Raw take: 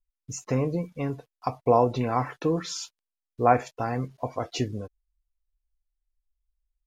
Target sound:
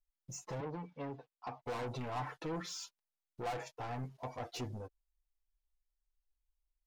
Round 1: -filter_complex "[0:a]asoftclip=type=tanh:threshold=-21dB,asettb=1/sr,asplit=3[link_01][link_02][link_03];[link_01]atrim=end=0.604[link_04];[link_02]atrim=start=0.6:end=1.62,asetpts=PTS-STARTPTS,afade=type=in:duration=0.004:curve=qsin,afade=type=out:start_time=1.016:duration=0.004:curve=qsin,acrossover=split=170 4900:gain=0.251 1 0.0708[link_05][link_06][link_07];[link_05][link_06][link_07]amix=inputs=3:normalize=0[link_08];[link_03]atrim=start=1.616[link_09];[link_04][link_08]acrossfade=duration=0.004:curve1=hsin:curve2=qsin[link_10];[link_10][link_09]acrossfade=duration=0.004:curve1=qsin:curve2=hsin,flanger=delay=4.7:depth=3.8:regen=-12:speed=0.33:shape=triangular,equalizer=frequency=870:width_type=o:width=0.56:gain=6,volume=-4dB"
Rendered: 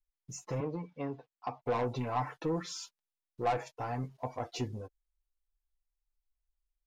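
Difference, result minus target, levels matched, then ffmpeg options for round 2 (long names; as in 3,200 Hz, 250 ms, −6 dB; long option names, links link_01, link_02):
soft clipping: distortion −6 dB
-filter_complex "[0:a]asoftclip=type=tanh:threshold=-31.5dB,asettb=1/sr,asplit=3[link_01][link_02][link_03];[link_01]atrim=end=0.604[link_04];[link_02]atrim=start=0.6:end=1.62,asetpts=PTS-STARTPTS,afade=type=in:duration=0.004:curve=qsin,afade=type=out:start_time=1.016:duration=0.004:curve=qsin,acrossover=split=170 4900:gain=0.251 1 0.0708[link_05][link_06][link_07];[link_05][link_06][link_07]amix=inputs=3:normalize=0[link_08];[link_03]atrim=start=1.616[link_09];[link_04][link_08]acrossfade=duration=0.004:curve1=hsin:curve2=qsin[link_10];[link_10][link_09]acrossfade=duration=0.004:curve1=qsin:curve2=hsin,flanger=delay=4.7:depth=3.8:regen=-12:speed=0.33:shape=triangular,equalizer=frequency=870:width_type=o:width=0.56:gain=6,volume=-4dB"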